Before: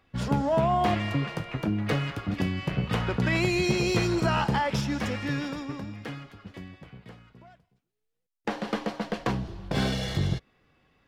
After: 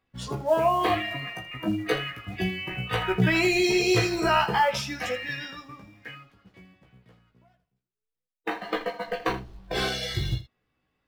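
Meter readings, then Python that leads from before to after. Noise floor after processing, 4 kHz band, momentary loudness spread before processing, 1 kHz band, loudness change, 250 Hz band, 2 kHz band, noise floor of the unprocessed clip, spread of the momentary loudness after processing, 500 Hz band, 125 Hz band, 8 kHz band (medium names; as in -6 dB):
under -85 dBFS, +4.0 dB, 15 LU, +3.0 dB, +1.5 dB, -1.5 dB, +4.0 dB, -79 dBFS, 14 LU, +3.0 dB, -4.0 dB, +3.5 dB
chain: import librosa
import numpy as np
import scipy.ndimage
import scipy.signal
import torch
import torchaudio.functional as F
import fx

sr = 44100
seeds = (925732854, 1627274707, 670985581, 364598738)

p1 = fx.noise_reduce_blind(x, sr, reduce_db=15)
p2 = fx.quant_float(p1, sr, bits=2)
p3 = p1 + (p2 * librosa.db_to_amplitude(-8.0))
y = fx.room_early_taps(p3, sr, ms=(16, 80), db=(-4.0, -13.5))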